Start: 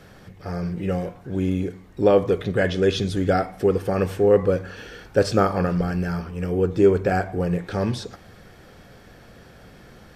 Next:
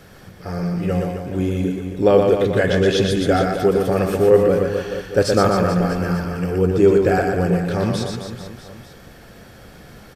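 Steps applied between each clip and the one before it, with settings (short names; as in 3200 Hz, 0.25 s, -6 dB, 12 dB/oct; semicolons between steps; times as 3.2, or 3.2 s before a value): high shelf 7700 Hz +7 dB; on a send: reverse bouncing-ball echo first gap 0.12 s, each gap 1.2×, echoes 5; on the sum: gain +2 dB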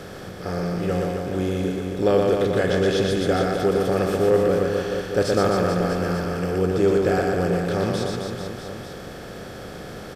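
per-bin compression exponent 0.6; gain -7.5 dB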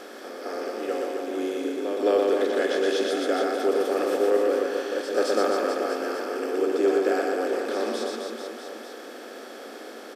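steep high-pass 230 Hz 96 dB/oct; reverse echo 0.216 s -8 dB; gain -3 dB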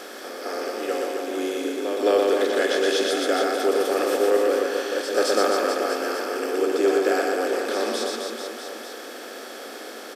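tilt +1.5 dB/oct; gain +3.5 dB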